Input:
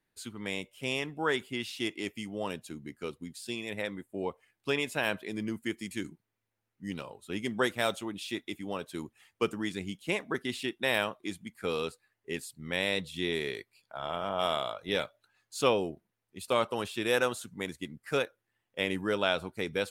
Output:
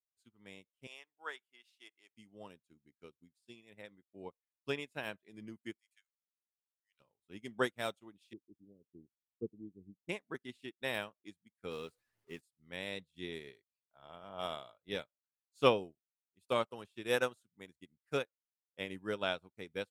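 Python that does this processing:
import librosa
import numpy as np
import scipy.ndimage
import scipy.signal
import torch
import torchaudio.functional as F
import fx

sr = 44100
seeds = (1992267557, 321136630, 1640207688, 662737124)

y = fx.highpass(x, sr, hz=720.0, slope=12, at=(0.87, 2.12))
y = fx.steep_highpass(y, sr, hz=1300.0, slope=36, at=(5.78, 6.99), fade=0.02)
y = fx.cheby2_lowpass(y, sr, hz=870.0, order=4, stop_db=40, at=(8.33, 10.09))
y = fx.zero_step(y, sr, step_db=-41.0, at=(11.71, 12.41))
y = fx.low_shelf(y, sr, hz=230.0, db=4.0)
y = fx.upward_expand(y, sr, threshold_db=-47.0, expansion=2.5)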